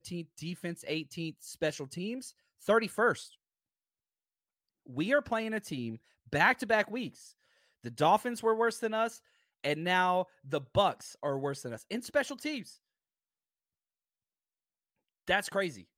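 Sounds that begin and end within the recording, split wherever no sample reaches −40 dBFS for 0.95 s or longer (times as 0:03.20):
0:04.89–0:12.70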